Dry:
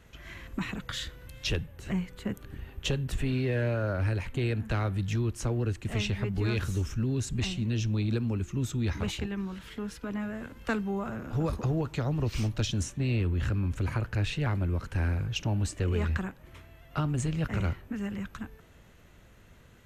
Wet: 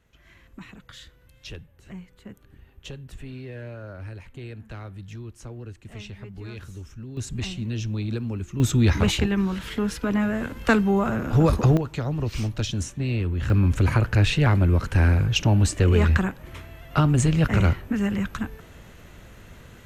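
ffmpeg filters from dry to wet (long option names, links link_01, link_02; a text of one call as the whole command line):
ffmpeg -i in.wav -af "asetnsamples=nb_out_samples=441:pad=0,asendcmd='7.17 volume volume 0.5dB;8.6 volume volume 11dB;11.77 volume volume 2.5dB;13.5 volume volume 10dB',volume=-9dB" out.wav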